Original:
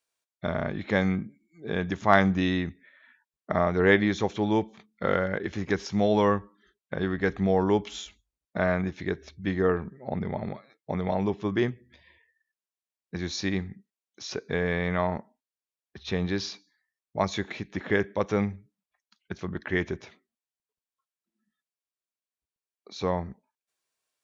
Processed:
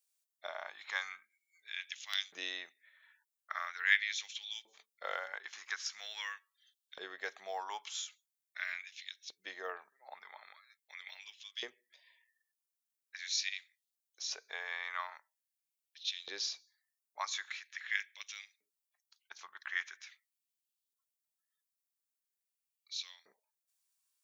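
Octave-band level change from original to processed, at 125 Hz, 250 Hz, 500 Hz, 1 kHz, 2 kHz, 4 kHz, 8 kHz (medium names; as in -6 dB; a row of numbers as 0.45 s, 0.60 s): under -40 dB, -40.0 dB, -25.5 dB, -15.0 dB, -6.5 dB, -0.5 dB, no reading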